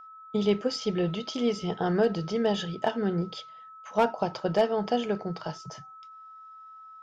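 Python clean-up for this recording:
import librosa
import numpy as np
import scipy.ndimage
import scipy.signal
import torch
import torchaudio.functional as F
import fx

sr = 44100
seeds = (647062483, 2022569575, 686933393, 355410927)

y = fx.fix_declip(x, sr, threshold_db=-14.0)
y = fx.notch(y, sr, hz=1300.0, q=30.0)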